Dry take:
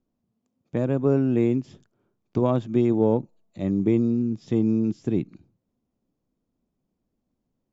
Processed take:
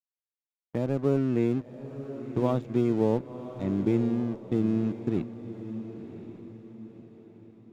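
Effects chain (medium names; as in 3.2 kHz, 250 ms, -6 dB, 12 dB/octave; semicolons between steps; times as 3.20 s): crossover distortion -38.5 dBFS; gate -43 dBFS, range -16 dB; echo that smears into a reverb 1050 ms, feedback 41%, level -11.5 dB; trim -3.5 dB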